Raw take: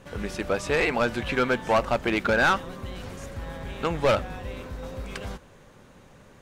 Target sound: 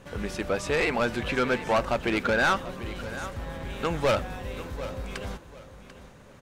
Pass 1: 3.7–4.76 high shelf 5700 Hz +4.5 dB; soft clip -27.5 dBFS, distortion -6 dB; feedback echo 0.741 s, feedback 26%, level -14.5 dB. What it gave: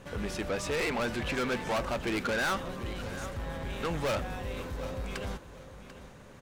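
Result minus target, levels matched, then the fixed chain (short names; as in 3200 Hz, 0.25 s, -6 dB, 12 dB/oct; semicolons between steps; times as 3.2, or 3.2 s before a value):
soft clip: distortion +12 dB
3.7–4.76 high shelf 5700 Hz +4.5 dB; soft clip -17 dBFS, distortion -18 dB; feedback echo 0.741 s, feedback 26%, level -14.5 dB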